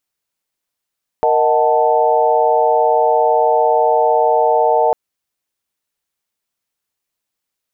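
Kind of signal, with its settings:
held notes A#4/D#5/F#5/A5 sine, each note −16 dBFS 3.70 s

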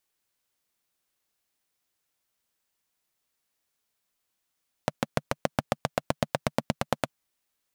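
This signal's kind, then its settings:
pulse-train model of a single-cylinder engine, changing speed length 2.22 s, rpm 800, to 1,100, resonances 150/220/560 Hz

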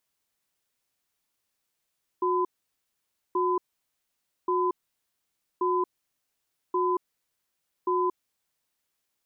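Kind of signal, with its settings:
tone pair in a cadence 363 Hz, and 1,010 Hz, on 0.23 s, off 0.90 s, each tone −25 dBFS 6.45 s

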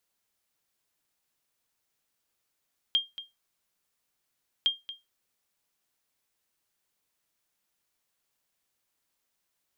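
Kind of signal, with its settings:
ping with an echo 3,210 Hz, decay 0.20 s, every 1.71 s, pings 2, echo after 0.23 s, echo −15 dB −16.5 dBFS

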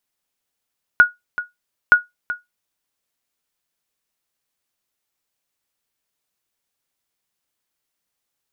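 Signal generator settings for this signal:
ping with an echo 1,450 Hz, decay 0.17 s, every 0.92 s, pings 2, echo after 0.38 s, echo −14.5 dB −1.5 dBFS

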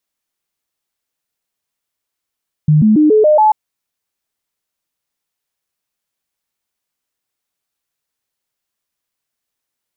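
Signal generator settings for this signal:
stepped sweep 152 Hz up, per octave 2, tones 6, 0.14 s, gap 0.00 s −6 dBFS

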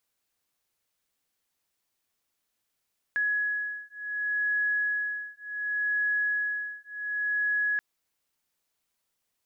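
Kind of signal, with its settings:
two tones that beat 1,680 Hz, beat 0.68 Hz, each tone −29.5 dBFS 4.63 s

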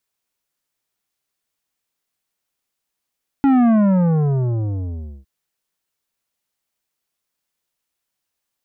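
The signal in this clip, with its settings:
bass drop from 280 Hz, over 1.81 s, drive 11 dB, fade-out 1.57 s, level −12 dB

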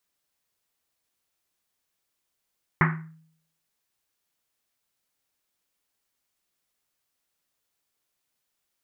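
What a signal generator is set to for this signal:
drum after Risset, pitch 160 Hz, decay 0.66 s, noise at 1,500 Hz, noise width 1,100 Hz, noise 40%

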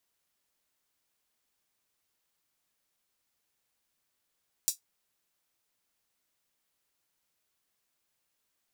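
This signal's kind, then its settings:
closed synth hi-hat, high-pass 5,800 Hz, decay 0.13 s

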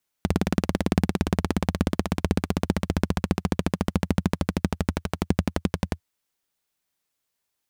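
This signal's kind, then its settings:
pulse-train model of a single-cylinder engine, changing speed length 5.75 s, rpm 2,200, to 1,300, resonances 84/180 Hz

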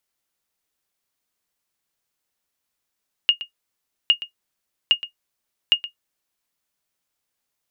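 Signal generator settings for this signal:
ping with an echo 2,850 Hz, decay 0.11 s, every 0.81 s, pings 4, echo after 0.12 s, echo −15.5 dB −6 dBFS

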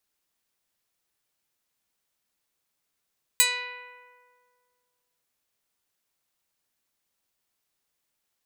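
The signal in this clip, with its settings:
Karplus-Strong string B4, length 1.85 s, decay 2.03 s, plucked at 0.09, medium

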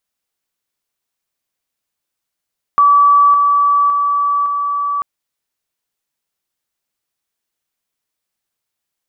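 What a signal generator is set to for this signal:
level staircase 1,150 Hz −6 dBFS, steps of −3 dB, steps 4, 0.56 s 0.00 s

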